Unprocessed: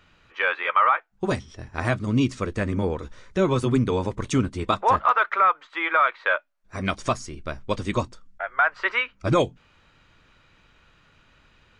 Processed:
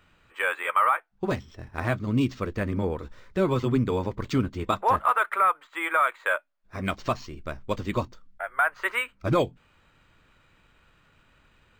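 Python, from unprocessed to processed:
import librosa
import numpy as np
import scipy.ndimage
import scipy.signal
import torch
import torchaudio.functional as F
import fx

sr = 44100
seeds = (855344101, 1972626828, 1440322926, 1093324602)

y = np.interp(np.arange(len(x)), np.arange(len(x))[::4], x[::4])
y = F.gain(torch.from_numpy(y), -2.5).numpy()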